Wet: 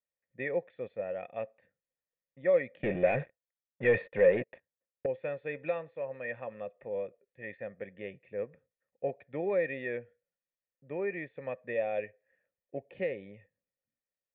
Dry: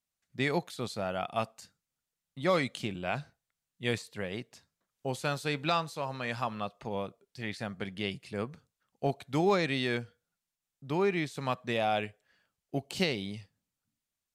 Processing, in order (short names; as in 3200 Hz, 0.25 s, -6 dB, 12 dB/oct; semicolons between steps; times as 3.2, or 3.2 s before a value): low-pass opened by the level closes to 2900 Hz, open at -29 dBFS; 2.83–5.06 sample leveller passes 5; vocal tract filter e; gain +7 dB